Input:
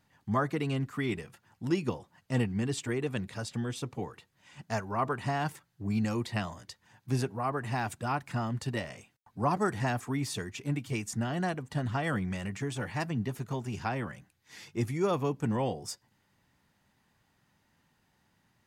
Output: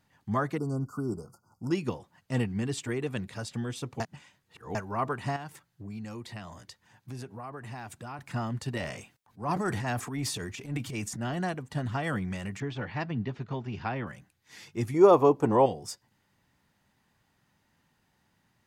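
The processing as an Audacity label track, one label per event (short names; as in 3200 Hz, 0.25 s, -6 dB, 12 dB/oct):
0.580000	1.710000	spectral delete 1500–4500 Hz
4.000000	4.750000	reverse
5.360000	8.190000	compressor 2.5:1, threshold -41 dBFS
8.770000	11.370000	transient shaper attack -10 dB, sustain +7 dB
12.600000	14.070000	LPF 4400 Hz 24 dB/oct
14.940000	15.660000	band shelf 600 Hz +11.5 dB 2.3 oct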